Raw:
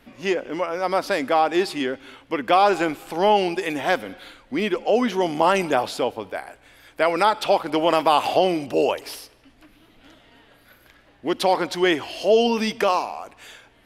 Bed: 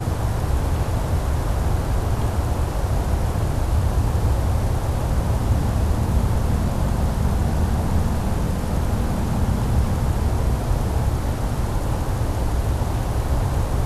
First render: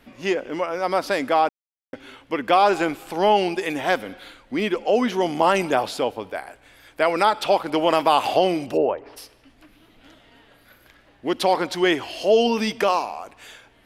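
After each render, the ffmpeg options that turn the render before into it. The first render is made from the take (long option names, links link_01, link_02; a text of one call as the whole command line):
ffmpeg -i in.wav -filter_complex "[0:a]asplit=3[link_01][link_02][link_03];[link_01]afade=type=out:start_time=8.76:duration=0.02[link_04];[link_02]lowpass=1200,afade=type=in:start_time=8.76:duration=0.02,afade=type=out:start_time=9.16:duration=0.02[link_05];[link_03]afade=type=in:start_time=9.16:duration=0.02[link_06];[link_04][link_05][link_06]amix=inputs=3:normalize=0,asplit=3[link_07][link_08][link_09];[link_07]atrim=end=1.49,asetpts=PTS-STARTPTS,afade=type=out:start_time=1.486:duration=0.004:curve=hsin[link_10];[link_08]atrim=start=1.49:end=1.93,asetpts=PTS-STARTPTS,volume=0[link_11];[link_09]atrim=start=1.93,asetpts=PTS-STARTPTS,afade=type=in:duration=0.004:curve=hsin[link_12];[link_10][link_11][link_12]concat=n=3:v=0:a=1" out.wav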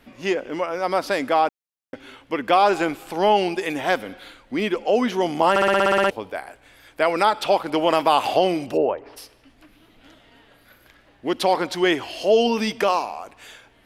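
ffmpeg -i in.wav -filter_complex "[0:a]asplit=11[link_01][link_02][link_03][link_04][link_05][link_06][link_07][link_08][link_09][link_10][link_11];[link_01]atrim=end=5.562[link_12];[link_02]atrim=start=5.498:end=5.562[link_13];[link_03]atrim=start=5.498:end=5.562[link_14];[link_04]atrim=start=5.498:end=5.562[link_15];[link_05]atrim=start=5.498:end=5.562[link_16];[link_06]atrim=start=5.498:end=5.562[link_17];[link_07]atrim=start=5.498:end=5.562[link_18];[link_08]atrim=start=5.498:end=5.562[link_19];[link_09]atrim=start=5.498:end=5.562[link_20];[link_10]atrim=start=5.498:end=5.562[link_21];[link_11]atrim=start=6.098[link_22];[link_12][link_13]acrossfade=duration=0.004:curve1=hsin:curve2=hsin[link_23];[link_23][link_14]acrossfade=duration=0.004:curve1=hsin:curve2=hsin[link_24];[link_24][link_15]acrossfade=duration=0.004:curve1=hsin:curve2=hsin[link_25];[link_25][link_16]acrossfade=duration=0.004:curve1=hsin:curve2=hsin[link_26];[link_26][link_17]acrossfade=duration=0.004:curve1=hsin:curve2=hsin[link_27];[link_27][link_18]acrossfade=duration=0.004:curve1=hsin:curve2=hsin[link_28];[link_28][link_19]acrossfade=duration=0.004:curve1=hsin:curve2=hsin[link_29];[link_29][link_20]acrossfade=duration=0.004:curve1=hsin:curve2=hsin[link_30];[link_30][link_21]acrossfade=duration=0.004:curve1=hsin:curve2=hsin[link_31];[link_31][link_22]acrossfade=duration=0.004:curve1=hsin:curve2=hsin" out.wav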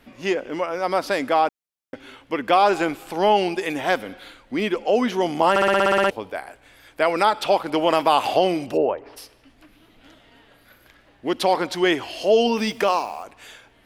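ffmpeg -i in.wav -filter_complex "[0:a]asettb=1/sr,asplit=3[link_01][link_02][link_03];[link_01]atrim=end=12.574[link_04];[link_02]atrim=start=12.57:end=13.23,asetpts=PTS-STARTPTS,afade=type=in:duration=0.004:curve=qsin,afade=type=out:start_time=0.656:duration=0.004:curve=qsin,acrusher=bits=7:mix=0:aa=0.5[link_05];[link_03]atrim=start=13.226[link_06];[link_04][link_05]acrossfade=duration=0.004:curve1=hsin:curve2=qsin[link_07];[link_07][link_06]acrossfade=duration=0.004:curve1=qsin:curve2=hsin" out.wav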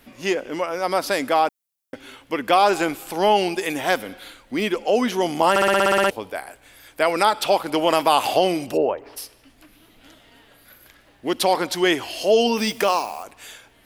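ffmpeg -i in.wav -af "highshelf=frequency=6400:gain=12" out.wav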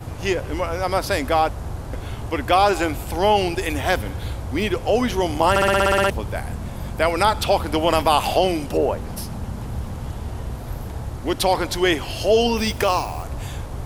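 ffmpeg -i in.wav -i bed.wav -filter_complex "[1:a]volume=-9dB[link_01];[0:a][link_01]amix=inputs=2:normalize=0" out.wav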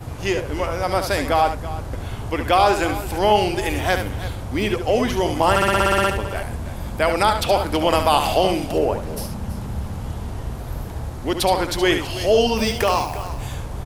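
ffmpeg -i in.wav -af "aecho=1:1:71|329:0.398|0.188" out.wav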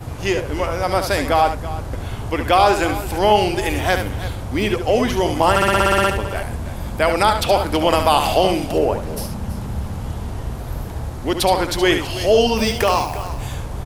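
ffmpeg -i in.wav -af "volume=2dB,alimiter=limit=-2dB:level=0:latency=1" out.wav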